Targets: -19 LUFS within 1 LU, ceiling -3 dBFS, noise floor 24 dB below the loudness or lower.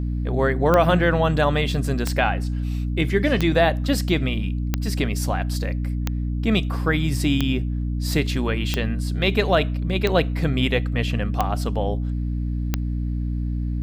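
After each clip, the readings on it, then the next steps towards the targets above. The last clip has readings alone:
clicks found 10; hum 60 Hz; highest harmonic 300 Hz; hum level -22 dBFS; loudness -22.5 LUFS; peak level -5.0 dBFS; loudness target -19.0 LUFS
-> de-click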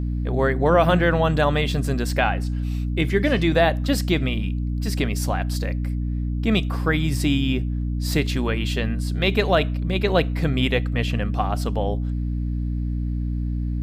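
clicks found 0; hum 60 Hz; highest harmonic 300 Hz; hum level -22 dBFS
-> hum notches 60/120/180/240/300 Hz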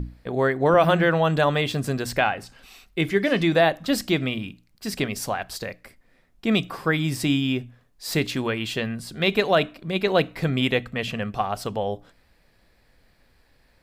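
hum not found; loudness -23.5 LUFS; peak level -6.5 dBFS; loudness target -19.0 LUFS
-> trim +4.5 dB; peak limiter -3 dBFS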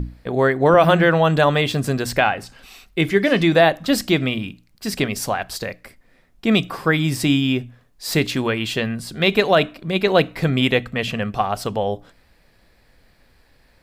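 loudness -19.5 LUFS; peak level -3.0 dBFS; noise floor -57 dBFS

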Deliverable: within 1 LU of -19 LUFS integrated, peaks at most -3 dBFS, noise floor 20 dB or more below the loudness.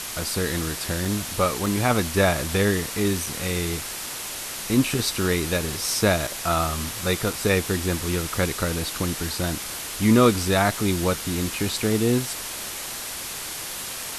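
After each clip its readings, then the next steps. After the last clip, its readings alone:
dropouts 5; longest dropout 3.6 ms; noise floor -33 dBFS; noise floor target -44 dBFS; loudness -24.0 LUFS; peak level -5.5 dBFS; loudness target -19.0 LUFS
-> interpolate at 1.05/1.66/3.26/6.27/7.33 s, 3.6 ms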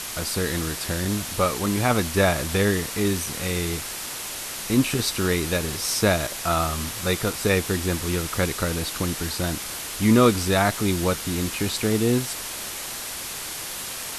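dropouts 0; noise floor -33 dBFS; noise floor target -44 dBFS
-> noise reduction 11 dB, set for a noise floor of -33 dBFS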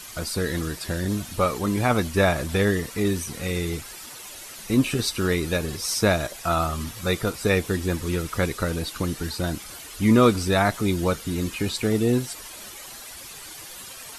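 noise floor -41 dBFS; noise floor target -45 dBFS
-> noise reduction 6 dB, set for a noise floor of -41 dBFS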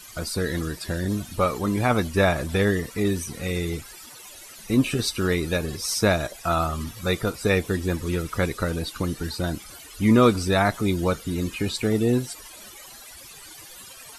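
noise floor -44 dBFS; noise floor target -45 dBFS
-> noise reduction 6 dB, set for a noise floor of -44 dBFS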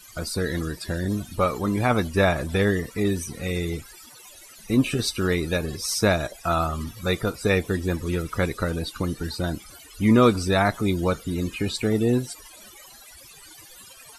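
noise floor -47 dBFS; loudness -24.5 LUFS; peak level -6.0 dBFS; loudness target -19.0 LUFS
-> trim +5.5 dB; peak limiter -3 dBFS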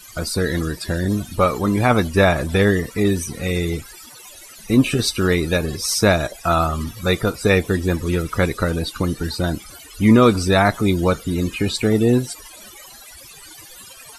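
loudness -19.0 LUFS; peak level -3.0 dBFS; noise floor -42 dBFS

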